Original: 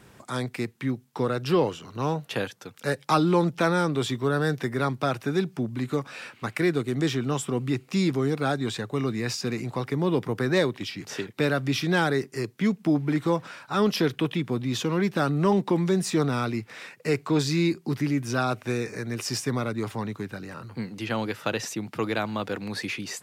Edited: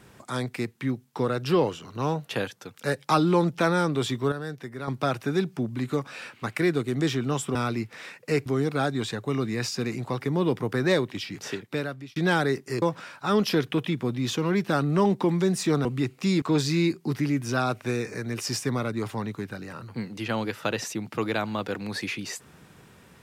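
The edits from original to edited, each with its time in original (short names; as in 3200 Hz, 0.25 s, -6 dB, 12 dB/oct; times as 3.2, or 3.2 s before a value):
4.32–4.88 gain -9.5 dB
7.55–8.12 swap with 16.32–17.23
11.14–11.82 fade out
12.48–13.29 cut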